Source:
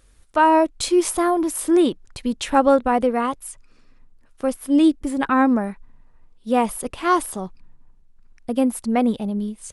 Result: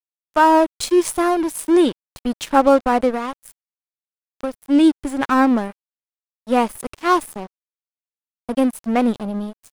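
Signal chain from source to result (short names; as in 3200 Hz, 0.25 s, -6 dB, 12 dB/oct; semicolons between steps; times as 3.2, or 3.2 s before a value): crossover distortion -31.5 dBFS; 3.14–4.55 compressor, threshold -23 dBFS, peak gain reduction 6.5 dB; gain +3 dB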